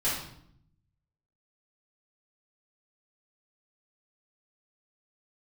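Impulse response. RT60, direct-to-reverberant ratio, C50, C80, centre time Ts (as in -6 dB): 0.70 s, -10.5 dB, 1.5 dB, 6.0 dB, 51 ms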